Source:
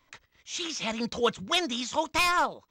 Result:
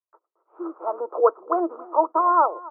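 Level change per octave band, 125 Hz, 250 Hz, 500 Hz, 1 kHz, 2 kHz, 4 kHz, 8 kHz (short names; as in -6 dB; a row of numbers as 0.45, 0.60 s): under -30 dB, +2.5 dB, +9.0 dB, +8.5 dB, -12.5 dB, under -40 dB, under -40 dB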